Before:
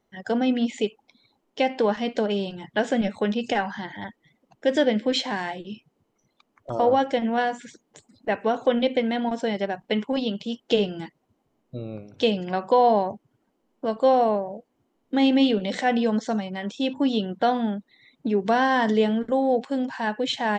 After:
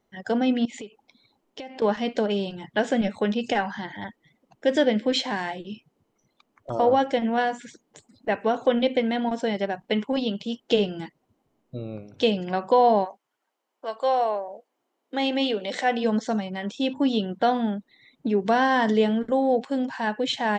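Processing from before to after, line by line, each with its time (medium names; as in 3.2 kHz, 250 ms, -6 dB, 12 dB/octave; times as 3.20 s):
0.65–1.82 s: compression 8:1, threshold -34 dBFS
13.04–16.03 s: high-pass 980 Hz -> 310 Hz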